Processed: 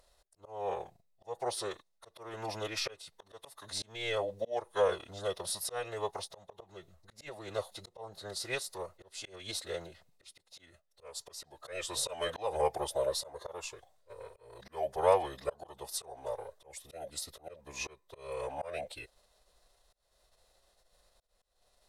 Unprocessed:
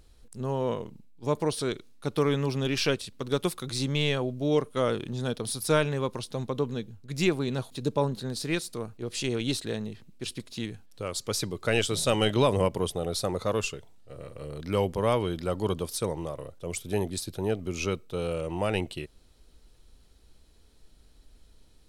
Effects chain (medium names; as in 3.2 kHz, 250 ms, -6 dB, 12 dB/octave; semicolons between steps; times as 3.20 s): band-stop 2.9 kHz, Q 6.5; formant-preserving pitch shift -4 st; slow attack 329 ms; resonant low shelf 410 Hz -12 dB, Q 3; trim -2 dB